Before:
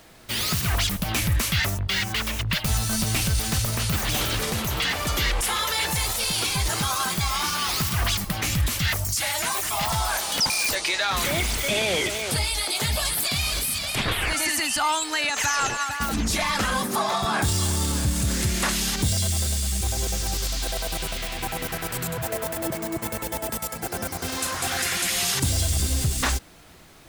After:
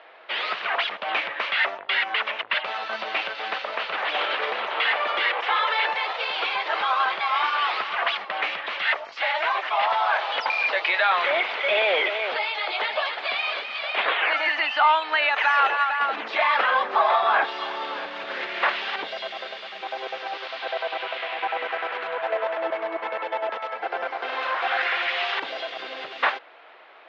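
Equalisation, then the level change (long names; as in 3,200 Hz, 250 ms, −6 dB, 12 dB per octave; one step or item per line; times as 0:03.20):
high-pass filter 520 Hz 24 dB per octave
low-pass filter 3,300 Hz 24 dB per octave
high-frequency loss of the air 220 metres
+7.0 dB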